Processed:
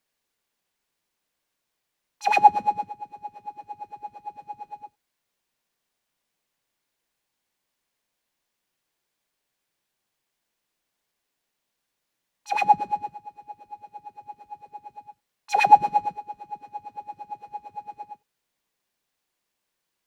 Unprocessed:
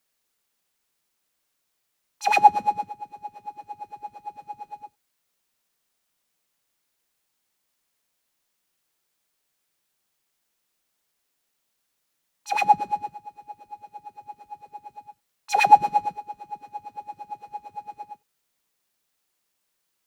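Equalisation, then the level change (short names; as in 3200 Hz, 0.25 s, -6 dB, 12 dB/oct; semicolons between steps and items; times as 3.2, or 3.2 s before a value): high shelf 5200 Hz -7.5 dB; notch 1300 Hz, Q 14; 0.0 dB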